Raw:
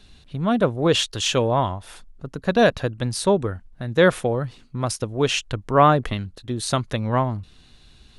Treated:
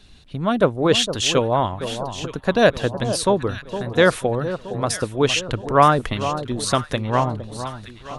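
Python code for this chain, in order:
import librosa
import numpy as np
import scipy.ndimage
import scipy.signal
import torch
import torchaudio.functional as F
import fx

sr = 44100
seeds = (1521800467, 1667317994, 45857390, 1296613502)

y = fx.echo_alternate(x, sr, ms=461, hz=1200.0, feedback_pct=69, wet_db=-10)
y = fx.hpss(y, sr, part='percussive', gain_db=5)
y = F.gain(torch.from_numpy(y), -1.5).numpy()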